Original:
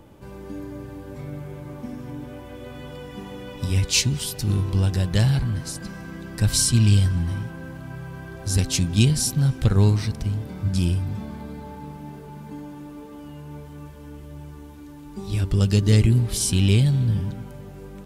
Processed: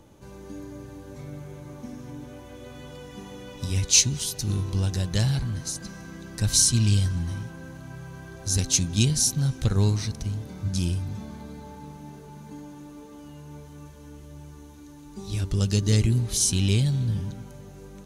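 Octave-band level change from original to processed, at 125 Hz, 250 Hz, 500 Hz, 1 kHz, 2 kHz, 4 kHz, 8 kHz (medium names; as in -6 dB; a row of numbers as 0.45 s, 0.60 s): -4.5 dB, -4.5 dB, -4.5 dB, -4.5 dB, -4.0 dB, 0.0 dB, +3.5 dB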